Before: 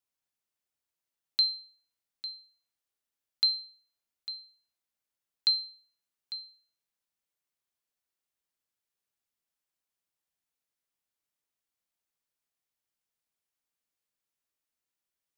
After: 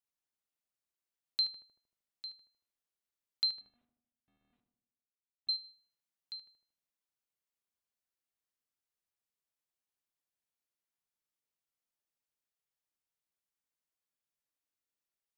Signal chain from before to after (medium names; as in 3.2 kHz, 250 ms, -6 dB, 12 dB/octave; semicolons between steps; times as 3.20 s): 3.61–5.49 s: CVSD coder 16 kbps; on a send: filtered feedback delay 77 ms, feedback 59%, low-pass 1.4 kHz, level -6 dB; on the sum: trim -6 dB